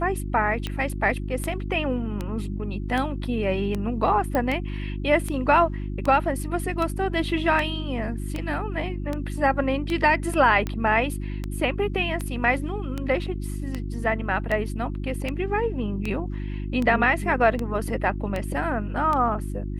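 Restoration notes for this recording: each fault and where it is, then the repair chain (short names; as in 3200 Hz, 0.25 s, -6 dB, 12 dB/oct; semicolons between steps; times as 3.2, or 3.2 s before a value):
hum 50 Hz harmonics 7 -30 dBFS
tick 78 rpm -15 dBFS
4.35 pop -13 dBFS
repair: de-click; de-hum 50 Hz, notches 7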